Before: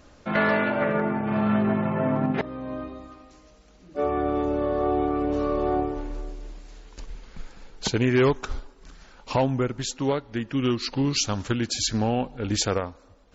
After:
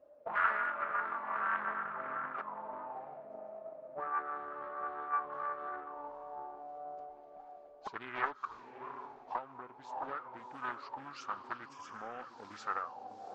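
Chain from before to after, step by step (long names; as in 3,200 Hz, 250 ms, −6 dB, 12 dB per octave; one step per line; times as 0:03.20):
spectral magnitudes quantised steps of 15 dB
feedback delay with all-pass diffusion 675 ms, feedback 42%, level −8.5 dB
0:09.38–0:09.85: downward compressor 10 to 1, threshold −24 dBFS, peak gain reduction 7 dB
envelope filter 570–1,300 Hz, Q 12, up, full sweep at −21 dBFS
0:11.69–0:12.19: Butterworth band-reject 4,100 Hz, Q 2.5
highs frequency-modulated by the lows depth 0.32 ms
level +5 dB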